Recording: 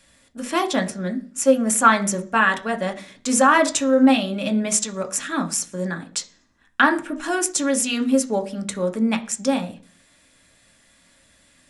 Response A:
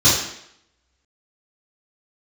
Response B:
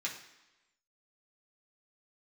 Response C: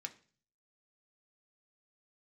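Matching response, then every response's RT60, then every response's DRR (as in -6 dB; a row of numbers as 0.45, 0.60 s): C; 0.75, 1.0, 0.40 s; -12.0, -4.0, 5.0 dB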